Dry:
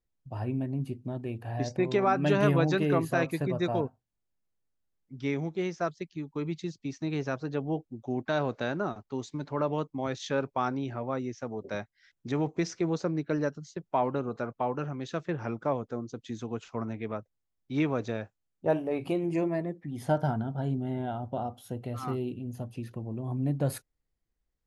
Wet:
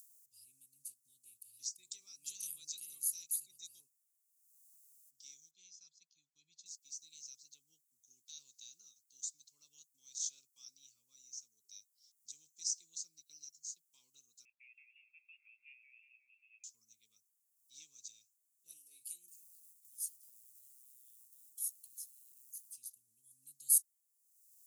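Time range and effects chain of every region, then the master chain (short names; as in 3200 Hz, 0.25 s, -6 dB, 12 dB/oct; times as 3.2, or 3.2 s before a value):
5.51–6.66 LPF 3400 Hz + comb 1.2 ms, depth 47%
14.45–16.64 steep high-pass 320 Hz 48 dB/oct + inverted band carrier 3000 Hz + warbling echo 0.179 s, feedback 48%, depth 98 cents, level -5 dB
19.28–22.77 low shelf 480 Hz +6 dB + compressor 20:1, threshold -37 dBFS + companded quantiser 8-bit
whole clip: upward compressor, threshold -50 dBFS; inverse Chebyshev high-pass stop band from 1800 Hz, stop band 70 dB; gain +16.5 dB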